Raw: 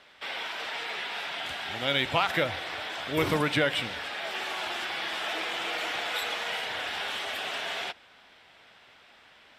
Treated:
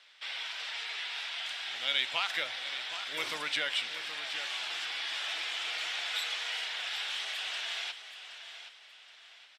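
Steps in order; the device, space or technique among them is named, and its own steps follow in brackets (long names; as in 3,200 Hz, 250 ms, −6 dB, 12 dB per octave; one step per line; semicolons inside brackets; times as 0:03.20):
piezo pickup straight into a mixer (low-pass filter 5,300 Hz 12 dB per octave; first difference)
repeating echo 772 ms, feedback 34%, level −11 dB
level +6.5 dB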